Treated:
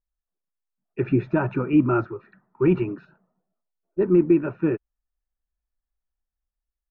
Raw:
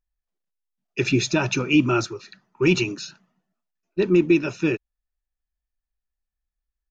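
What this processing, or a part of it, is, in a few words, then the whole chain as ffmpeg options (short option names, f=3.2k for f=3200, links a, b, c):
action camera in a waterproof case: -filter_complex "[0:a]asettb=1/sr,asplit=3[a][b][c];[a]atrim=end=3.054[d];[b]atrim=start=3.05:end=4.01,asetpts=PTS-STARTPTS,afade=t=in:d=0.004:c=qsin,afade=t=out:st=0.956:d=0.004:c=qsin,equalizer=f=125:t=o:w=1:g=-4,equalizer=f=250:t=o:w=1:g=-6,equalizer=f=500:t=o:w=1:g=5,equalizer=f=1k:t=o:w=1:g=-3,equalizer=f=2k:t=o:w=1:g=-10[e];[c]atrim=start=4.006[f];[d][e]acrossfade=d=0.004:c1=hsin:c2=qsin[g];[g][f]acrossfade=d=0.004:c1=qsin:c2=hsin,lowpass=f=1.6k:w=0.5412,lowpass=f=1.6k:w=1.3066,dynaudnorm=f=220:g=7:m=4dB,volume=-3.5dB" -ar 48000 -c:a aac -b:a 64k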